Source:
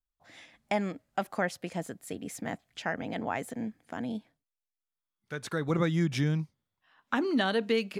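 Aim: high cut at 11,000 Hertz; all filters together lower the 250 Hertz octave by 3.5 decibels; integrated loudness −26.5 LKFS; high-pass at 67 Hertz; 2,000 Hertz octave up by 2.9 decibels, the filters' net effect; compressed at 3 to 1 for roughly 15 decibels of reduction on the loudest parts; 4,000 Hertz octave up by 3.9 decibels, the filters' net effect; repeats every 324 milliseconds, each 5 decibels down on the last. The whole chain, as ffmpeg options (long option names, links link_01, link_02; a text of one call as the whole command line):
ffmpeg -i in.wav -af "highpass=67,lowpass=11000,equalizer=frequency=250:width_type=o:gain=-5,equalizer=frequency=2000:width_type=o:gain=3,equalizer=frequency=4000:width_type=o:gain=4,acompressor=threshold=-47dB:ratio=3,aecho=1:1:324|648|972|1296|1620|1944|2268:0.562|0.315|0.176|0.0988|0.0553|0.031|0.0173,volume=19.5dB" out.wav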